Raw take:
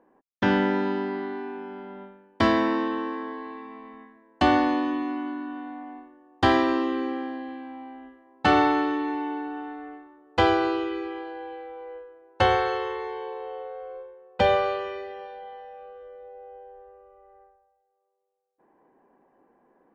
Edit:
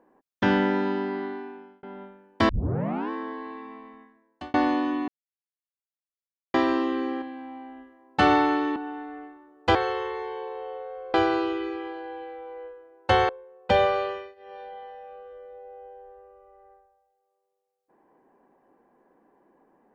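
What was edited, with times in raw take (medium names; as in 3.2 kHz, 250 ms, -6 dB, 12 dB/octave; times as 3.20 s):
1.25–1.83 s: fade out
2.49 s: tape start 0.61 s
3.70–4.54 s: fade out
5.08–6.54 s: mute
7.22–7.48 s: delete
9.02–9.46 s: delete
12.60–13.99 s: move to 10.45 s
14.80–15.31 s: dip -20.5 dB, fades 0.25 s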